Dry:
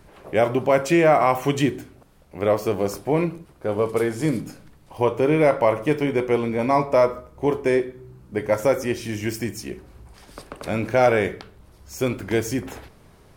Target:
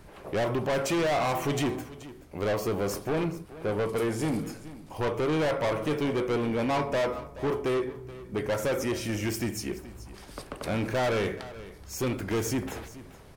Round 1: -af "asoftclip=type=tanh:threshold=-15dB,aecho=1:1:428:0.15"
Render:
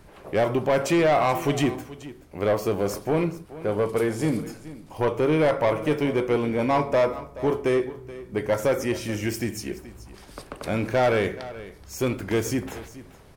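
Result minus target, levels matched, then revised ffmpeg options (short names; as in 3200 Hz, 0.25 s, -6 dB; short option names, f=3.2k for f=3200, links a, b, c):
soft clip: distortion -7 dB
-af "asoftclip=type=tanh:threshold=-24dB,aecho=1:1:428:0.15"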